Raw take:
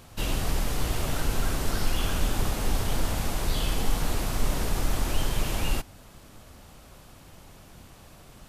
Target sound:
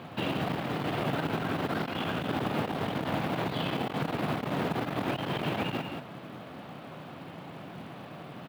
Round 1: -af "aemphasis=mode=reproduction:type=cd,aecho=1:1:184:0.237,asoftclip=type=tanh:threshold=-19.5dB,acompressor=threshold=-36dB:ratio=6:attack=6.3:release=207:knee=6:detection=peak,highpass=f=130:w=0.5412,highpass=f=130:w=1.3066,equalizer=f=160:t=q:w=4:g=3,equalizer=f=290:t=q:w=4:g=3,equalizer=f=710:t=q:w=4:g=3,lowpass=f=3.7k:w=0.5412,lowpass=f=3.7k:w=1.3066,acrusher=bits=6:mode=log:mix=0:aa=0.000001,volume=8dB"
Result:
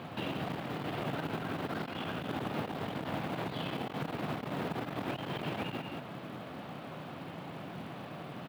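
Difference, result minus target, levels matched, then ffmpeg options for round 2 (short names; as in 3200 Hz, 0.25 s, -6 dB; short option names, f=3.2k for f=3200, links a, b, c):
compressor: peak gain reduction +6 dB
-af "aemphasis=mode=reproduction:type=cd,aecho=1:1:184:0.237,asoftclip=type=tanh:threshold=-19.5dB,acompressor=threshold=-29dB:ratio=6:attack=6.3:release=207:knee=6:detection=peak,highpass=f=130:w=0.5412,highpass=f=130:w=1.3066,equalizer=f=160:t=q:w=4:g=3,equalizer=f=290:t=q:w=4:g=3,equalizer=f=710:t=q:w=4:g=3,lowpass=f=3.7k:w=0.5412,lowpass=f=3.7k:w=1.3066,acrusher=bits=6:mode=log:mix=0:aa=0.000001,volume=8dB"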